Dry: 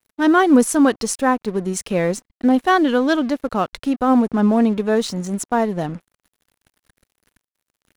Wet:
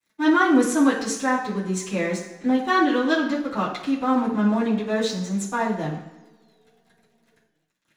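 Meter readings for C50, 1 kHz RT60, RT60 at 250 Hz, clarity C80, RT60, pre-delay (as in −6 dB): 6.0 dB, 1.1 s, 1.1 s, 9.0 dB, 1.3 s, 3 ms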